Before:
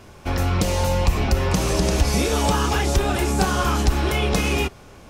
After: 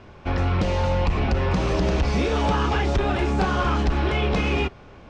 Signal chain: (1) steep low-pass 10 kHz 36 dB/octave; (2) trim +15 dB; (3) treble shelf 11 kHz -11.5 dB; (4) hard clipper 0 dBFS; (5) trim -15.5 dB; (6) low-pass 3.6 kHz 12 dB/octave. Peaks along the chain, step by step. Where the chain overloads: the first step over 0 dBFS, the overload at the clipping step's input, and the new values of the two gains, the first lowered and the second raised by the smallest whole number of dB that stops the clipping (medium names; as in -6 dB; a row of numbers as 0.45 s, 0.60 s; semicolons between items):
-6.5 dBFS, +8.5 dBFS, +8.5 dBFS, 0.0 dBFS, -15.5 dBFS, -15.0 dBFS; step 2, 8.5 dB; step 2 +6 dB, step 5 -6.5 dB